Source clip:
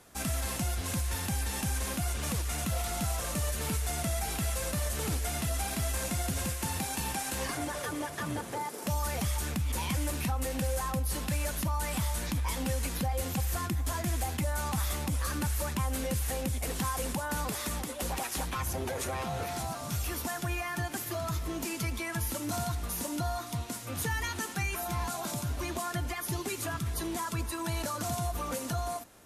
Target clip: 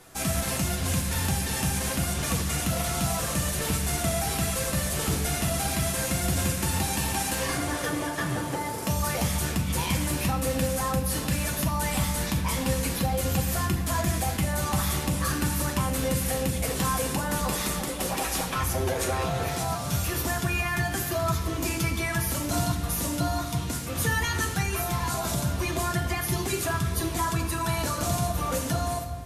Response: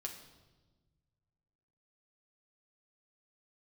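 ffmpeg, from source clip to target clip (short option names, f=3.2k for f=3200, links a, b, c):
-filter_complex "[1:a]atrim=start_sample=2205[a];[0:a][a]afir=irnorm=-1:irlink=0,volume=8.5dB"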